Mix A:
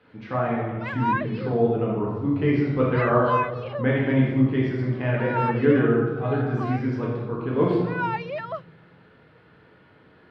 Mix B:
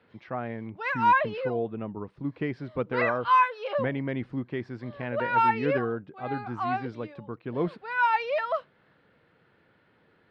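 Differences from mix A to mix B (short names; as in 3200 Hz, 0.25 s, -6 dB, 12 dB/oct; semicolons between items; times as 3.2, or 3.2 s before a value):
background +4.0 dB; reverb: off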